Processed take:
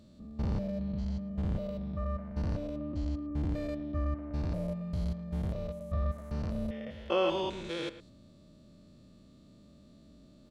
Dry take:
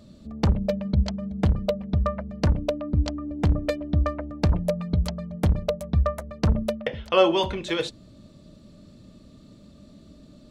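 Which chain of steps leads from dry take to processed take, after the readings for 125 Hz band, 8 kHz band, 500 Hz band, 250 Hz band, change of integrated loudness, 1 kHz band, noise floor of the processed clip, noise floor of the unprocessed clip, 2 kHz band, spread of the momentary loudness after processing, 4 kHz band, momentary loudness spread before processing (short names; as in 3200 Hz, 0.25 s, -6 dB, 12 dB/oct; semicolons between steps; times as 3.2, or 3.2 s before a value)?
-10.0 dB, n/a, -10.0 dB, -8.0 dB, -9.5 dB, -10.5 dB, -58 dBFS, -51 dBFS, -11.0 dB, 5 LU, -11.0 dB, 5 LU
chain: stepped spectrum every 0.2 s; speakerphone echo 0.11 s, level -13 dB; gain -6.5 dB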